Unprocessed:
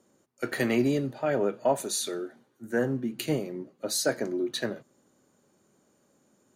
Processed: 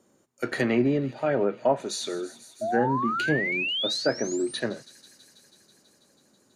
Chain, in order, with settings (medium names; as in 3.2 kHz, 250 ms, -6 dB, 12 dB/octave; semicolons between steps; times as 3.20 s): feedback echo behind a high-pass 163 ms, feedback 80%, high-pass 2.6 kHz, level -17.5 dB; painted sound rise, 2.61–4.60 s, 620–10000 Hz -30 dBFS; low-pass that closes with the level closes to 2.4 kHz, closed at -21 dBFS; trim +2 dB